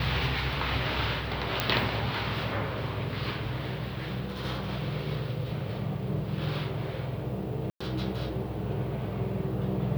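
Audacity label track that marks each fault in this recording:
1.600000	1.600000	click −9 dBFS
7.700000	7.800000	drop-out 105 ms

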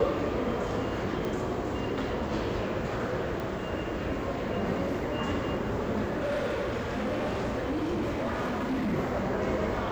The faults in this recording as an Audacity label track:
1.250000	1.250000	click
3.400000	3.400000	click
6.040000	8.940000	clipping −26.5 dBFS

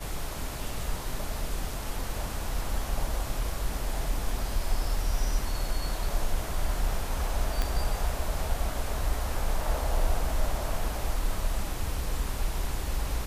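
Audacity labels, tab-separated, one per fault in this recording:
7.620000	7.620000	click

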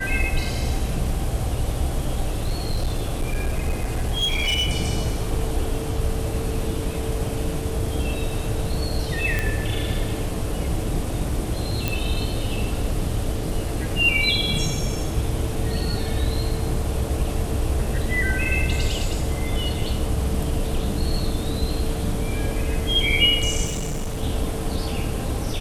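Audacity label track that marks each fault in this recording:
2.260000	4.690000	clipping −18 dBFS
9.390000	9.390000	click −9 dBFS
11.880000	11.880000	click
23.650000	24.240000	clipping −23 dBFS

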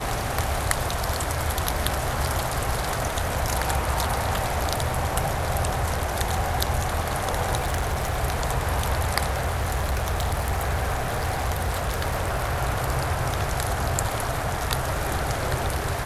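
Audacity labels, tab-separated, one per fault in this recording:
7.550000	8.180000	clipping −21 dBFS
9.300000	12.620000	clipping −20 dBFS

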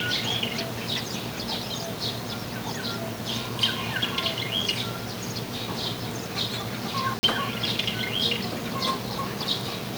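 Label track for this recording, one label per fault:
7.190000	7.230000	drop-out 40 ms

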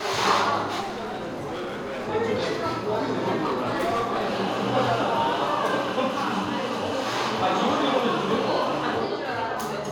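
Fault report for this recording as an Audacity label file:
0.800000	2.090000	clipping −28.5 dBFS
3.440000	4.380000	clipping −21 dBFS

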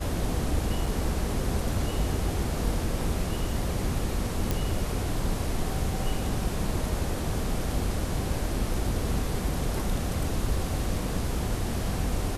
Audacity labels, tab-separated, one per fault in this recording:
0.860000	0.860000	drop-out 3.9 ms
4.510000	4.510000	click

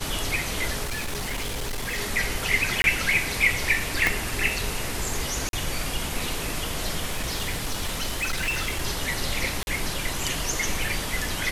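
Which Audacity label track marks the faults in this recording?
0.830000	1.990000	clipping −26 dBFS
2.820000	2.840000	drop-out 21 ms
4.070000	4.070000	click −6 dBFS
5.490000	5.530000	drop-out 42 ms
7.090000	8.820000	clipping −22.5 dBFS
9.630000	9.670000	drop-out 41 ms

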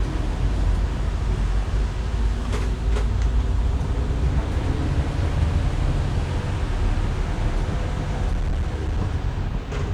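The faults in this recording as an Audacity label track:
8.310000	8.990000	clipping −19.5 dBFS

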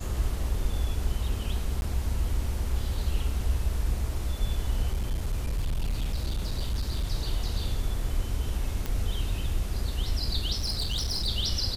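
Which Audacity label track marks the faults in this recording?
1.810000	1.820000	drop-out 11 ms
4.920000	7.040000	clipping −24 dBFS
8.860000	8.860000	click −16 dBFS
10.550000	11.280000	clipping −25 dBFS

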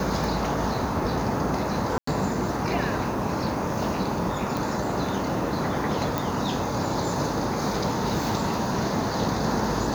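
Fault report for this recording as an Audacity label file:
1.980000	2.070000	drop-out 94 ms
4.570000	4.570000	click
6.180000	6.180000	click

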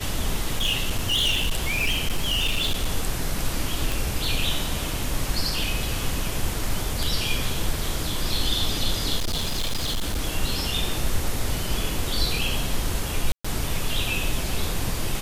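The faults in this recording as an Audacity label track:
0.570000	2.890000	clipping −18 dBFS
3.920000	3.920000	click
9.170000	10.200000	clipping −21.5 dBFS
13.320000	13.450000	drop-out 125 ms

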